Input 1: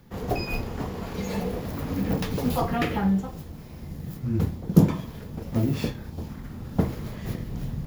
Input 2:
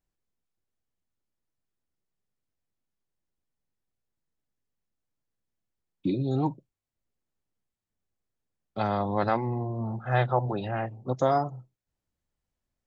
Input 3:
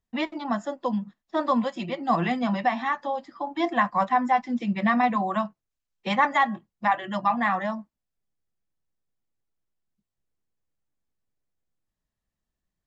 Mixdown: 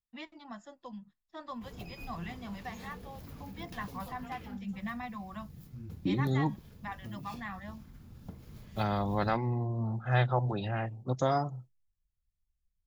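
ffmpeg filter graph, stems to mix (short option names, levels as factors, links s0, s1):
-filter_complex "[0:a]bandreject=f=1900:w=16,acompressor=threshold=0.0501:ratio=6,adelay=1500,volume=0.251[s0];[1:a]agate=range=0.0224:threshold=0.00631:ratio=3:detection=peak,volume=1.26[s1];[2:a]asubboost=boost=9:cutoff=110,volume=0.251[s2];[s0][s1][s2]amix=inputs=3:normalize=0,equalizer=f=570:w=0.36:g=-7.5"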